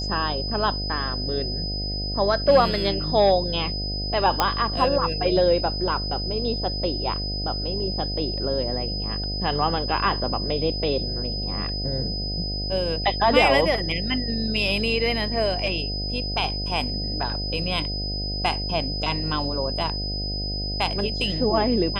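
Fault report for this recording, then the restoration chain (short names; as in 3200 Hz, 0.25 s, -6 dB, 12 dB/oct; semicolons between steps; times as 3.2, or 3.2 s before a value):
buzz 50 Hz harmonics 15 -30 dBFS
tone 5000 Hz -29 dBFS
4.4 pop -4 dBFS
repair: de-click; de-hum 50 Hz, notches 15; notch 5000 Hz, Q 30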